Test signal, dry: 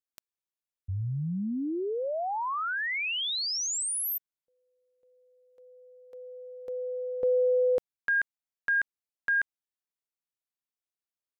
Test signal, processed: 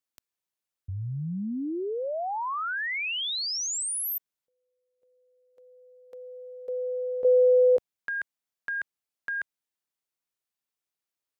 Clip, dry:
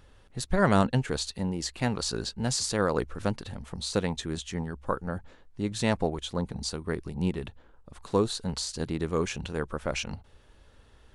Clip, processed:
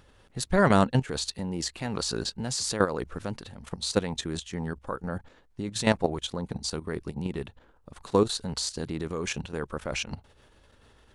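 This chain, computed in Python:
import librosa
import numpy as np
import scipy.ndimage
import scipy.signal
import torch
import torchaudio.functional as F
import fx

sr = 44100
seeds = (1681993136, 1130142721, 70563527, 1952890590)

y = fx.level_steps(x, sr, step_db=12)
y = fx.low_shelf(y, sr, hz=65.0, db=-7.5)
y = y * 10.0 ** (5.5 / 20.0)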